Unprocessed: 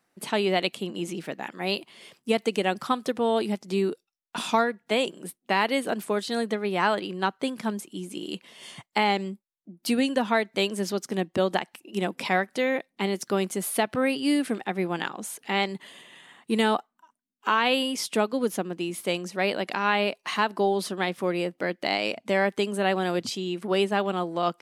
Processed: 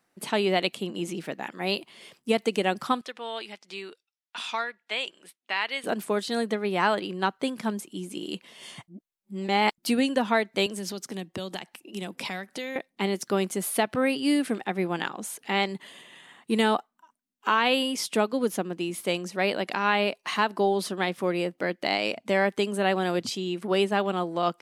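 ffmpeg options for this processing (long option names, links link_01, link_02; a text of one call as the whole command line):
ffmpeg -i in.wav -filter_complex "[0:a]asettb=1/sr,asplit=3[link_01][link_02][link_03];[link_01]atrim=end=3.014[link_04];[link_02]atrim=start=3.01:end=5.84,asetpts=PTS-STARTPTS,afade=type=in:duration=0.004:curve=qsin,afade=type=out:start_time=2.826:duration=0.004:curve=qsin,bandpass=frequency=2700:width_type=q:width=0.84[link_05];[link_03]atrim=start=5.836[link_06];[link_04][link_05]acrossfade=duration=0.004:curve1=hsin:curve2=qsin[link_07];[link_07][link_06]acrossfade=duration=0.004:curve1=qsin:curve2=hsin,asettb=1/sr,asplit=3[link_08][link_09][link_10];[link_08]atrim=end=10.664[link_11];[link_09]atrim=start=10.66:end=12.76,asetpts=PTS-STARTPTS,afade=type=in:duration=0.004:curve=qsin,afade=type=out:start_time=2.096:duration=0.004:curve=qsin,acrossover=split=140|3000[link_12][link_13][link_14];[link_13]acompressor=threshold=-33dB:ratio=6:attack=3.2:release=140:knee=2.83:detection=peak[link_15];[link_12][link_15][link_14]amix=inputs=3:normalize=0[link_16];[link_10]atrim=start=12.756[link_17];[link_11][link_16]acrossfade=duration=0.004:curve1=hsin:curve2=qsin[link_18];[link_18][link_17]acrossfade=duration=0.004:curve1=qsin:curve2=hsin,asplit=3[link_19][link_20][link_21];[link_19]atrim=end=8.882[link_22];[link_20]atrim=start=8.878:end=9.782,asetpts=PTS-STARTPTS,areverse[link_23];[link_21]atrim=start=9.778[link_24];[link_22][link_23]acrossfade=duration=0.004:curve1=hsin:curve2=hsin[link_25];[link_25][link_24]acrossfade=duration=0.004:curve1=hsin:curve2=hsin" out.wav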